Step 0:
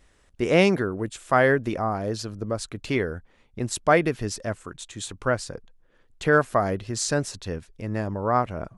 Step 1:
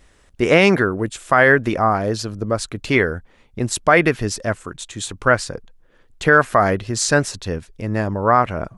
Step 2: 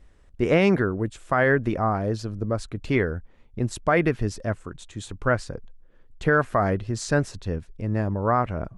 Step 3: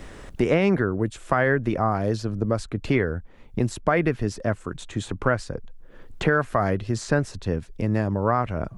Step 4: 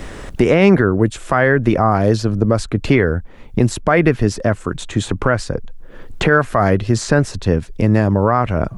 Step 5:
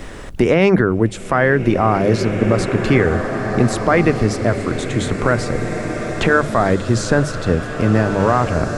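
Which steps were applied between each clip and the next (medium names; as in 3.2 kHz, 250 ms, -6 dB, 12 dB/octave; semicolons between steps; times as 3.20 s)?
dynamic bell 1.7 kHz, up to +7 dB, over -35 dBFS, Q 0.72; loudness maximiser +7.5 dB; trim -1 dB
tilt EQ -2 dB/octave; trim -8 dB
three bands compressed up and down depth 70%
loudness maximiser +11 dB; trim -1 dB
hum notches 50/100/150/200 Hz; swelling reverb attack 2010 ms, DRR 5.5 dB; trim -1 dB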